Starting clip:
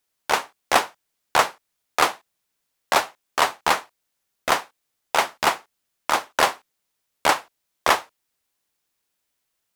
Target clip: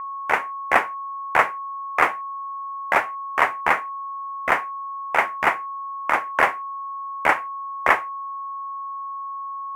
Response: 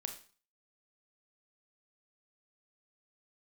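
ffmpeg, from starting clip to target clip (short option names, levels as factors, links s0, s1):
-af "aeval=exprs='val(0)+0.0355*sin(2*PI*1100*n/s)':c=same,highshelf=f=2900:t=q:w=3:g=-11.5,volume=0.841"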